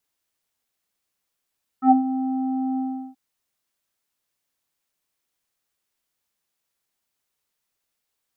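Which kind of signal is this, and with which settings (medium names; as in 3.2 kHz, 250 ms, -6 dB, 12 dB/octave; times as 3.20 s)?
synth note square C4 24 dB/octave, low-pass 650 Hz, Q 5.3, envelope 1 oct, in 0.12 s, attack 68 ms, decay 0.14 s, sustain -10 dB, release 0.37 s, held 0.96 s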